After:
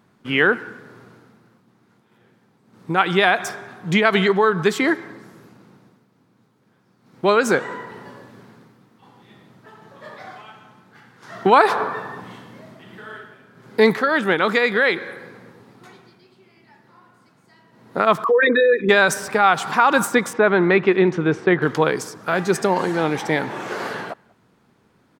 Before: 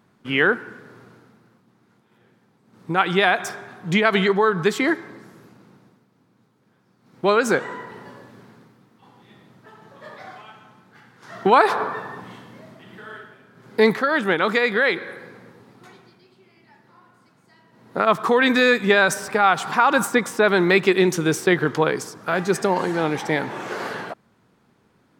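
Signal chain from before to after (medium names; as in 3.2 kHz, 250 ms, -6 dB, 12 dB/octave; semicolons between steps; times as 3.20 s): 18.24–18.89 s: resonances exaggerated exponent 3; 20.33–21.62 s: low-pass 2.2 kHz 12 dB/octave; speakerphone echo 190 ms, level -27 dB; trim +1.5 dB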